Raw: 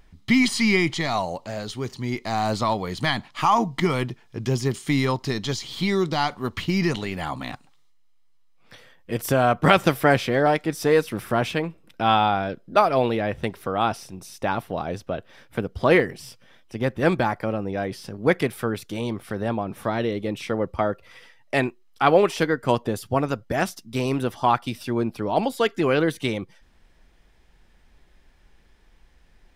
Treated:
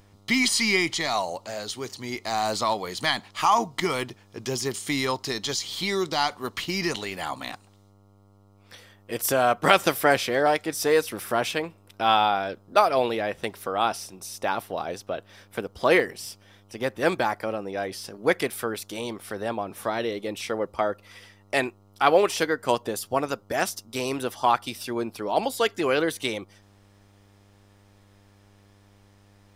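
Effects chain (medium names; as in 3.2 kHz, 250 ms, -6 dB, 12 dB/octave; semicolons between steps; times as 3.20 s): tone controls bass -12 dB, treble +7 dB; mains buzz 100 Hz, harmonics 14, -56 dBFS -6 dB/octave; trim -1 dB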